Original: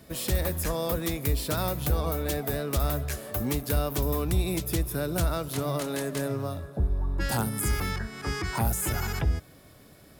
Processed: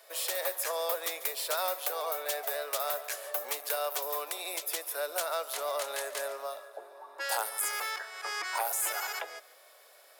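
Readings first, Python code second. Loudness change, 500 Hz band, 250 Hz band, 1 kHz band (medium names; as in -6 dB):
-3.5 dB, -3.5 dB, -27.5 dB, 0.0 dB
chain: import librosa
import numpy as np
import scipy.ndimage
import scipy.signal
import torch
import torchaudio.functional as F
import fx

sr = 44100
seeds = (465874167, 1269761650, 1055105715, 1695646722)

p1 = scipy.signal.sosfilt(scipy.signal.butter(6, 520.0, 'highpass', fs=sr, output='sos'), x)
y = p1 + fx.echo_single(p1, sr, ms=142, db=-17.5, dry=0)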